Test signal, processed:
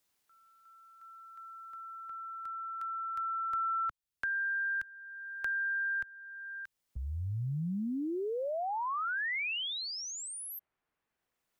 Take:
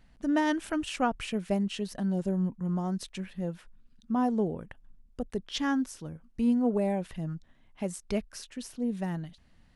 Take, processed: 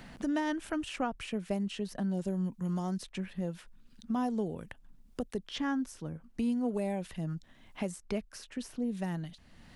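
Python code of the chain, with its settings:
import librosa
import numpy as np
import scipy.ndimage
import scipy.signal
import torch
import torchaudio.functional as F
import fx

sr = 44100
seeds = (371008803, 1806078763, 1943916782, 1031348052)

y = fx.band_squash(x, sr, depth_pct=70)
y = y * 10.0 ** (-4.0 / 20.0)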